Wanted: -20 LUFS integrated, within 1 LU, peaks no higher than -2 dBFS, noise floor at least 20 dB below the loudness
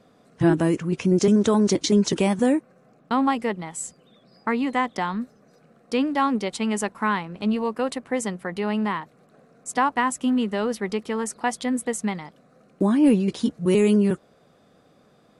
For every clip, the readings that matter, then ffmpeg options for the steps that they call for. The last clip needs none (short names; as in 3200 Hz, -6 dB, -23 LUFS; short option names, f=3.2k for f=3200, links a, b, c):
loudness -23.5 LUFS; peak -9.0 dBFS; loudness target -20.0 LUFS
-> -af "volume=3.5dB"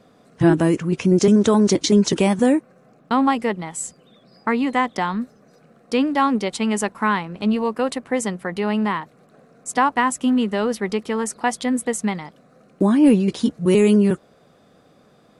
loudness -20.0 LUFS; peak -5.5 dBFS; noise floor -55 dBFS